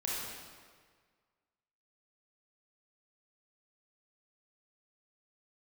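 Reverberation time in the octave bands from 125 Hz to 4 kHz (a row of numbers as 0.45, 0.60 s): 1.7, 1.7, 1.7, 1.7, 1.6, 1.3 s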